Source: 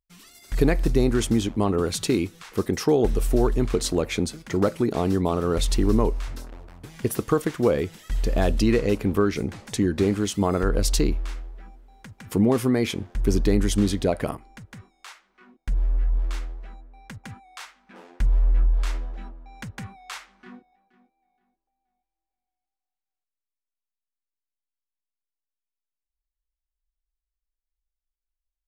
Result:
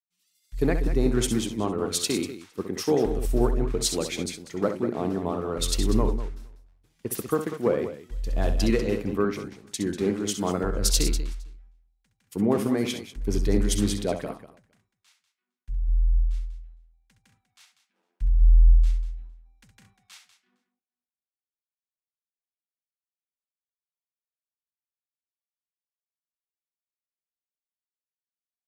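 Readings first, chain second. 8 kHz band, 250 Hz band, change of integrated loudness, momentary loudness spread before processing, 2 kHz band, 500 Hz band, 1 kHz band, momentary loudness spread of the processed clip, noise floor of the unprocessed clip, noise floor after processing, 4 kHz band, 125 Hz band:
+2.5 dB, −4.0 dB, −2.0 dB, 18 LU, −4.0 dB, −3.0 dB, −3.5 dB, 13 LU, below −85 dBFS, below −85 dBFS, +1.0 dB, −3.0 dB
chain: multi-tap delay 67/195/461 ms −8/−8/−20 dB
multiband upward and downward expander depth 100%
level −5.5 dB

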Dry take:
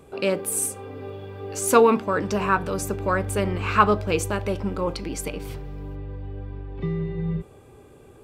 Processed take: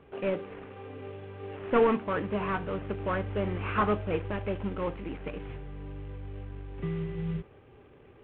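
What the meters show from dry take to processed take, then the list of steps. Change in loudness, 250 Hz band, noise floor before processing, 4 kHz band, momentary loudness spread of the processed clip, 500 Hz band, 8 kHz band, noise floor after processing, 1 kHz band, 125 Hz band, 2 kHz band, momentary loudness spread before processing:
−8.5 dB, −6.0 dB, −49 dBFS, −11.0 dB, 15 LU, −7.0 dB, below −40 dB, −55 dBFS, −9.5 dB, −6.0 dB, −8.5 dB, 17 LU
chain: variable-slope delta modulation 16 kbit/s
level −5.5 dB

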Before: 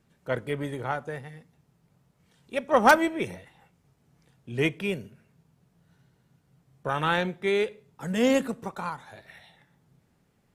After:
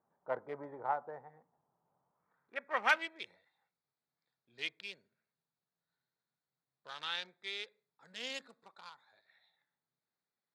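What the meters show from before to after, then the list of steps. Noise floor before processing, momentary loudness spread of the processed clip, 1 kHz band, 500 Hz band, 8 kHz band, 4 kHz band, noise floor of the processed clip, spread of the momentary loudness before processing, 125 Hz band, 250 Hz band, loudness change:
−68 dBFS, 20 LU, −12.5 dB, −18.0 dB, −15.0 dB, −5.0 dB, below −85 dBFS, 17 LU, below −25 dB, −27.0 dB, −11.5 dB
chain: adaptive Wiener filter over 15 samples
band-pass filter sweep 870 Hz → 4,000 Hz, 0:02.04–0:03.32

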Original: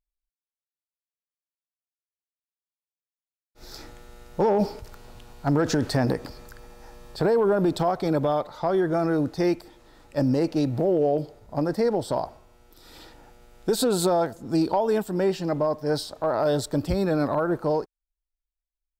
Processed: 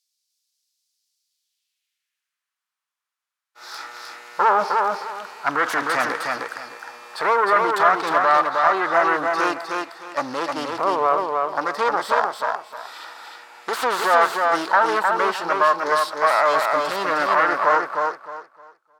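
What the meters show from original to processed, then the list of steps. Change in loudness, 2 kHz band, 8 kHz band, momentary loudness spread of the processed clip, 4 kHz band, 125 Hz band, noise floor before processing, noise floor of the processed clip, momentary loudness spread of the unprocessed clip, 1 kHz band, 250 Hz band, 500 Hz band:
+4.5 dB, +16.5 dB, 0.0 dB, 18 LU, +5.0 dB, −17.5 dB, below −85 dBFS, below −85 dBFS, 10 LU, +13.0 dB, −8.0 dB, +0.5 dB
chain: phase distortion by the signal itself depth 0.23 ms
spectral tilt +4.5 dB per octave
harmonic and percussive parts rebalanced percussive −4 dB
in parallel at −11 dB: sine wavefolder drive 17 dB, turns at −2 dBFS
on the sum: band-pass filter sweep 4,900 Hz → 1,200 Hz, 0:01.22–0:02.45
on a send: repeating echo 308 ms, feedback 25%, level −3.5 dB
on the sum: level +6.5 dB

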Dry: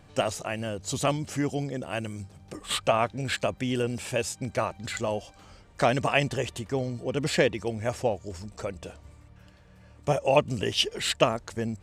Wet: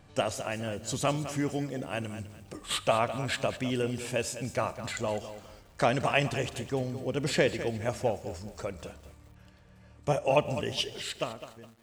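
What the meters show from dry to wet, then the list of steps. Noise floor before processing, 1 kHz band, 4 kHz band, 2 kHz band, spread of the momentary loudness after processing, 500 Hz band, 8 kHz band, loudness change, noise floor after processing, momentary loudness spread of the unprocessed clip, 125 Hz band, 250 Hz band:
−54 dBFS, −2.5 dB, −4.0 dB, −2.5 dB, 13 LU, −2.5 dB, −3.0 dB, −3.0 dB, −56 dBFS, 12 LU, −2.5 dB, −2.5 dB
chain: fade-out on the ending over 1.62 s
four-comb reverb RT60 0.94 s, combs from 27 ms, DRR 16.5 dB
feedback echo at a low word length 206 ms, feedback 35%, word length 8 bits, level −12 dB
level −2.5 dB

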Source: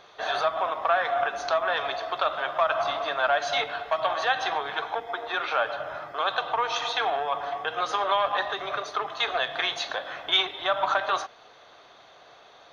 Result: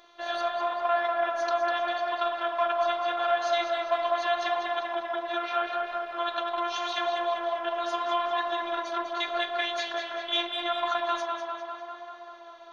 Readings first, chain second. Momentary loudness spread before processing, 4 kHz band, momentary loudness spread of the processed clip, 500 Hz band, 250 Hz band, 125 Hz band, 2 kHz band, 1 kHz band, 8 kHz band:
7 LU, −4.0 dB, 6 LU, 0.0 dB, +5.5 dB, below −15 dB, −4.5 dB, −1.5 dB, can't be measured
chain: phases set to zero 345 Hz
tape delay 198 ms, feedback 77%, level −3.5 dB, low-pass 4,100 Hz
level −2.5 dB

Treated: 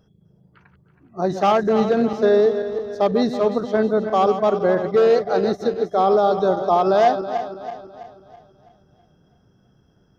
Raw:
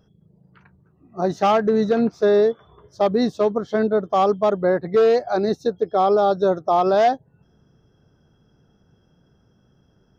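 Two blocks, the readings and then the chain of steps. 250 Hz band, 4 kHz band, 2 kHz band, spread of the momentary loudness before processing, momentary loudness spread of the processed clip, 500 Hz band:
+0.5 dB, +0.5 dB, +1.0 dB, 6 LU, 10 LU, +1.0 dB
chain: feedback delay that plays each chunk backwards 164 ms, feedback 66%, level −9.5 dB

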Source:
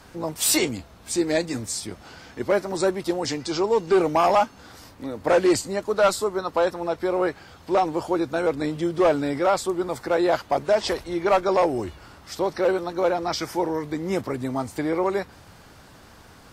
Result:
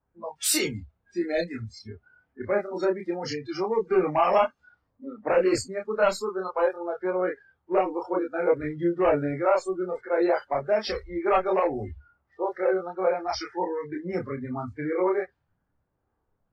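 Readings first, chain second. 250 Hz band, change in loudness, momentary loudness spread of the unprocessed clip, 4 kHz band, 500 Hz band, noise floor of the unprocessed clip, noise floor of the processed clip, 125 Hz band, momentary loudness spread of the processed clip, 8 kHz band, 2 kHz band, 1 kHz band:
−4.0 dB, −3.0 dB, 10 LU, −5.5 dB, −2.5 dB, −49 dBFS, −77 dBFS, −4.0 dB, 12 LU, −5.0 dB, −3.0 dB, −3.5 dB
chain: low-pass that shuts in the quiet parts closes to 1,100 Hz, open at −20 dBFS
multi-voice chorus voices 6, 0.47 Hz, delay 28 ms, depth 1.3 ms
noise reduction from a noise print of the clip's start 26 dB

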